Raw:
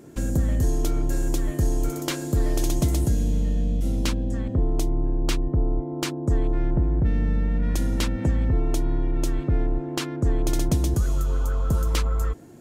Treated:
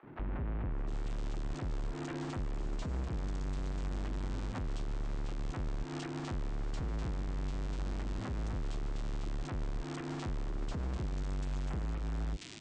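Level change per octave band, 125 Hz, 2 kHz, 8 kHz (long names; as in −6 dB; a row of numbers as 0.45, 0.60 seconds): −14.0, −10.0, −20.0 decibels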